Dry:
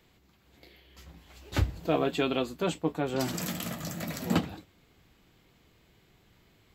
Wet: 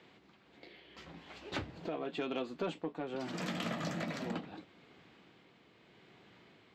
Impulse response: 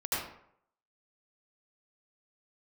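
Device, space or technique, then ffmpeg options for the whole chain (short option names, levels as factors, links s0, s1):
AM radio: -af "highpass=190,lowpass=3600,acompressor=threshold=0.0126:ratio=5,asoftclip=type=tanh:threshold=0.0335,tremolo=f=0.8:d=0.35,volume=1.88"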